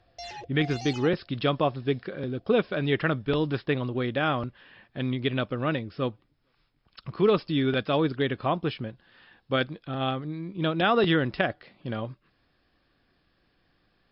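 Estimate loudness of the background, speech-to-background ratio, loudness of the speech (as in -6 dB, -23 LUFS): -41.0 LUFS, 13.5 dB, -27.5 LUFS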